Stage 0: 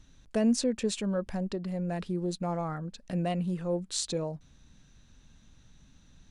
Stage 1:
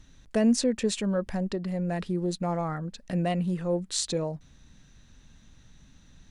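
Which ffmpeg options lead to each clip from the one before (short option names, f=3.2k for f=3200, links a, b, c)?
-af "equalizer=f=1.9k:w=6.1:g=4,volume=3dB"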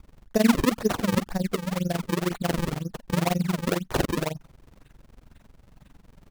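-af "adynamicequalizer=threshold=0.00316:dfrequency=4100:dqfactor=1.7:tfrequency=4100:tqfactor=1.7:attack=5:release=100:ratio=0.375:range=3.5:mode=boostabove:tftype=bell,tremolo=f=22:d=0.919,acrusher=samples=36:mix=1:aa=0.000001:lfo=1:lforange=57.6:lforate=2,volume=6dB"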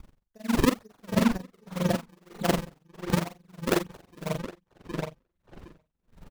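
-filter_complex "[0:a]asplit=2[a][b];[b]adelay=43,volume=-5.5dB[c];[a][c]amix=inputs=2:normalize=0,asplit=2[d][e];[e]adelay=765,lowpass=f=4k:p=1,volume=-6.5dB,asplit=2[f][g];[g]adelay=765,lowpass=f=4k:p=1,volume=0.16,asplit=2[h][i];[i]adelay=765,lowpass=f=4k:p=1,volume=0.16[j];[f][h][j]amix=inputs=3:normalize=0[k];[d][k]amix=inputs=2:normalize=0,aeval=exprs='val(0)*pow(10,-36*(0.5-0.5*cos(2*PI*1.6*n/s))/20)':c=same,volume=2dB"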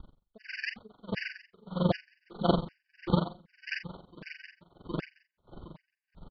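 -af "aresample=11025,aresample=44100,aecho=1:1:721|1442:0.0891|0.0267,afftfilt=real='re*gt(sin(2*PI*1.3*pts/sr)*(1-2*mod(floor(b*sr/1024/1500),2)),0)':imag='im*gt(sin(2*PI*1.3*pts/sr)*(1-2*mod(floor(b*sr/1024/1500),2)),0)':win_size=1024:overlap=0.75"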